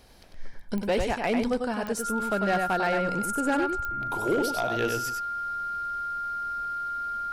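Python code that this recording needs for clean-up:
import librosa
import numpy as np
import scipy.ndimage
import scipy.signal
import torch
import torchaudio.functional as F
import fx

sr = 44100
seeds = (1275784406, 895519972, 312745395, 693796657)

y = fx.fix_declip(x, sr, threshold_db=-19.0)
y = fx.fix_declick_ar(y, sr, threshold=10.0)
y = fx.notch(y, sr, hz=1400.0, q=30.0)
y = fx.fix_echo_inverse(y, sr, delay_ms=97, level_db=-5.0)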